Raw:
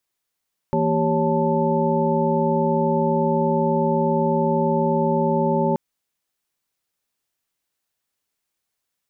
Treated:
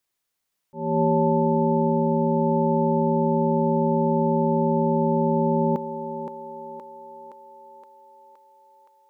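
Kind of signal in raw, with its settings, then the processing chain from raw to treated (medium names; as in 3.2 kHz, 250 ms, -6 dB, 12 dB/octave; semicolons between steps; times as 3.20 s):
chord E3/A#3/G4/C#5/A5 sine, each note -23.5 dBFS 5.03 s
slow attack 279 ms; on a send: thinning echo 519 ms, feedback 72%, high-pass 450 Hz, level -5.5 dB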